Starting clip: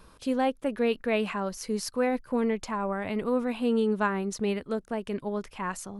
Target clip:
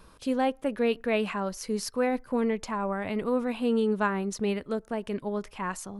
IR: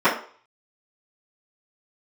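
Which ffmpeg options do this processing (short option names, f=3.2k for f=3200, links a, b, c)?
-filter_complex "[0:a]asplit=2[a][b];[1:a]atrim=start_sample=2205[c];[b][c]afir=irnorm=-1:irlink=0,volume=-45.5dB[d];[a][d]amix=inputs=2:normalize=0"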